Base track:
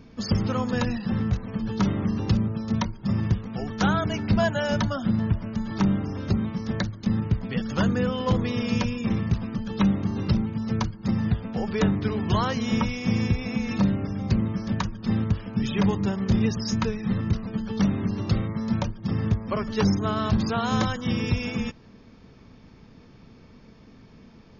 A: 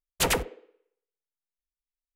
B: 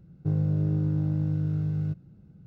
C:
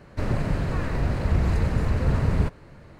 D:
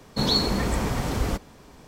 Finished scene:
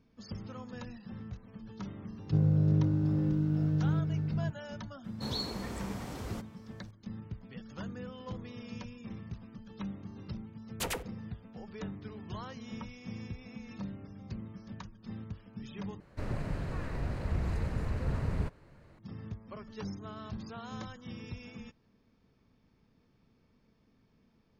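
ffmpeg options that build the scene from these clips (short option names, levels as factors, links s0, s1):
-filter_complex "[0:a]volume=0.119[s0];[2:a]aecho=1:1:504:0.596[s1];[4:a]highpass=58[s2];[s0]asplit=2[s3][s4];[s3]atrim=end=16.004[s5];[3:a]atrim=end=2.99,asetpts=PTS-STARTPTS,volume=0.299[s6];[s4]atrim=start=18.986[s7];[s1]atrim=end=2.46,asetpts=PTS-STARTPTS,volume=0.944,afade=t=in:d=0.004:c=hsin,afade=t=out:st=2.456:d=0.004:c=hsin,adelay=2070[s8];[s2]atrim=end=1.87,asetpts=PTS-STARTPTS,volume=0.2,afade=t=in:d=0.004:c=hsin,afade=t=out:st=1.866:d=0.004:c=hsin,adelay=5040[s9];[1:a]atrim=end=2.15,asetpts=PTS-STARTPTS,volume=0.282,afade=t=in:d=0.004:c=hsin,afade=t=out:st=2.146:d=0.004:c=hsin,adelay=10600[s10];[s5][s6]acrossfade=d=0.004:c1=hsin:c2=hsin[s11];[s11][s7]acrossfade=d=0.004:c1=hsin:c2=hsin[s12];[s12][s8][s9][s10]amix=inputs=4:normalize=0"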